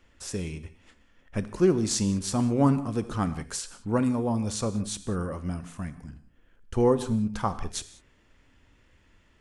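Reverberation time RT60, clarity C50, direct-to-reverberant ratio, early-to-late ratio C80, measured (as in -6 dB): not exponential, 14.0 dB, 12.0 dB, 15.5 dB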